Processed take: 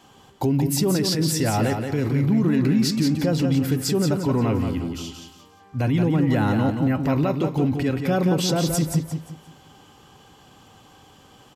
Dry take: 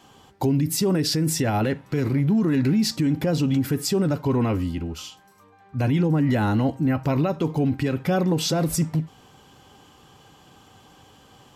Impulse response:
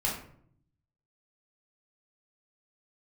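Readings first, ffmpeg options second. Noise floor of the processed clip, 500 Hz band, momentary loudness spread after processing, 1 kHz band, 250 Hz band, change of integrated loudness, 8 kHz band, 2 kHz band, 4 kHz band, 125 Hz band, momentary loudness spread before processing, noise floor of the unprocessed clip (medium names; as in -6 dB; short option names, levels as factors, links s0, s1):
-52 dBFS, +1.0 dB, 7 LU, +1.0 dB, +1.0 dB, +1.0 dB, +1.0 dB, +1.0 dB, +1.0 dB, +1.0 dB, 7 LU, -54 dBFS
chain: -af "aecho=1:1:176|352|528|704:0.501|0.165|0.0546|0.018"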